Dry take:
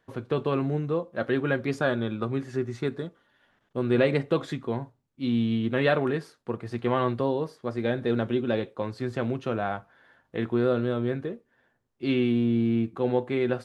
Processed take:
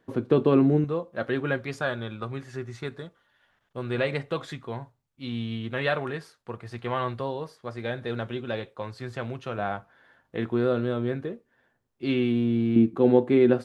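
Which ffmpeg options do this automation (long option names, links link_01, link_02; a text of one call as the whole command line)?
ffmpeg -i in.wav -af "asetnsamples=nb_out_samples=441:pad=0,asendcmd='0.84 equalizer g -2.5;1.58 equalizer g -9;9.58 equalizer g -0.5;12.76 equalizer g 9',equalizer=frequency=280:width_type=o:width=1.7:gain=9.5" out.wav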